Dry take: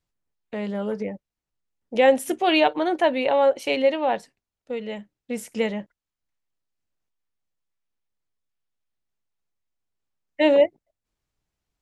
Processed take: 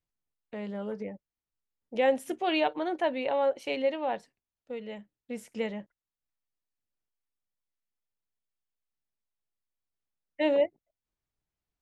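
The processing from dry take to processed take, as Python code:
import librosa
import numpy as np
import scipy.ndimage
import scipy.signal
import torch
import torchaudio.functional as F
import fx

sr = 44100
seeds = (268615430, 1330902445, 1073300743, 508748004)

y = fx.high_shelf(x, sr, hz=6600.0, db=-7.0)
y = F.gain(torch.from_numpy(y), -8.0).numpy()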